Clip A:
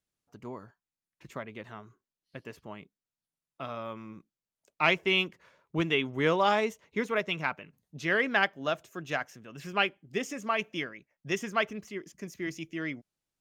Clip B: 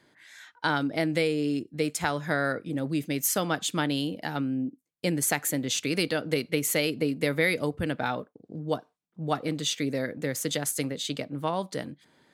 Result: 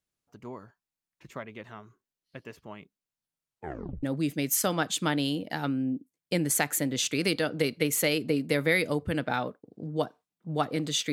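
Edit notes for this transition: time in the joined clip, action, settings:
clip A
0:03.44: tape stop 0.59 s
0:04.03: continue with clip B from 0:02.75

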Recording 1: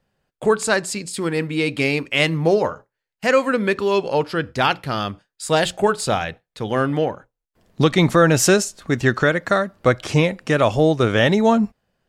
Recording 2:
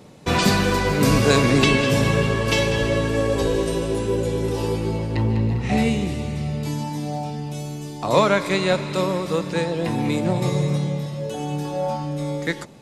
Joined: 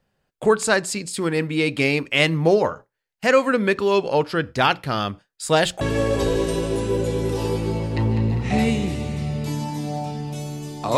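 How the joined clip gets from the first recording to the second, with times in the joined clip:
recording 1
0:05.81: continue with recording 2 from 0:03.00

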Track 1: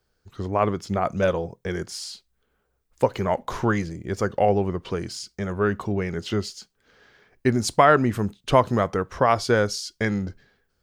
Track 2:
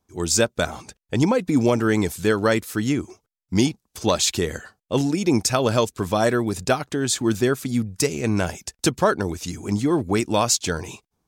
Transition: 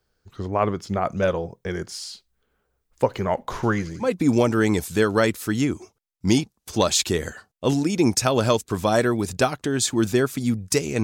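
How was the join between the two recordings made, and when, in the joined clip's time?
track 1
0:03.54–0:04.09: delay with a high-pass on its return 88 ms, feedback 64%, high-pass 4,100 Hz, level −6.5 dB
0:04.04: continue with track 2 from 0:01.32, crossfade 0.10 s

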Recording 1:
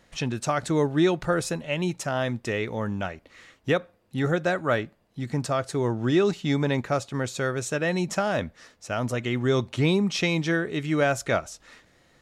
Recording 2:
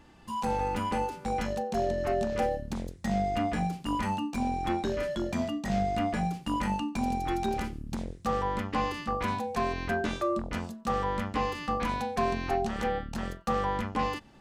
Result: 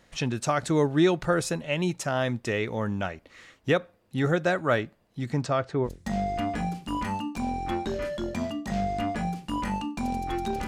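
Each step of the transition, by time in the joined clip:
recording 1
0:05.32–0:05.89: low-pass filter 8,700 Hz → 1,400 Hz
0:05.86: continue with recording 2 from 0:02.84, crossfade 0.06 s

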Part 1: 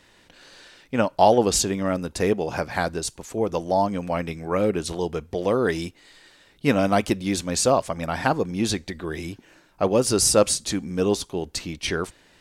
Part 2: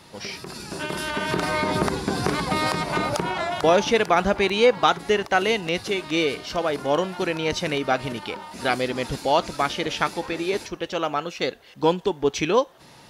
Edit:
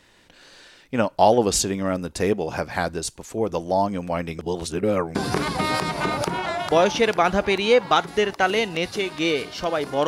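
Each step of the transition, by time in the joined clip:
part 1
0:04.39–0:05.15: reverse
0:05.15: continue with part 2 from 0:02.07

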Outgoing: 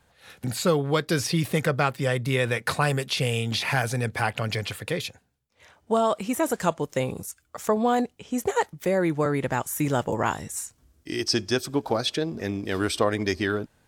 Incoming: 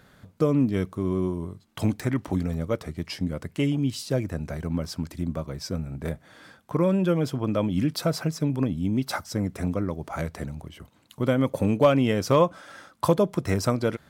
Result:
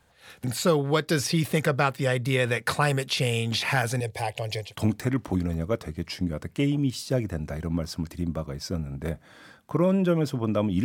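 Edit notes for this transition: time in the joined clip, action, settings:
outgoing
0:04.00–0:04.76: phaser with its sweep stopped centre 560 Hz, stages 4
0:04.67: continue with incoming from 0:01.67, crossfade 0.18 s

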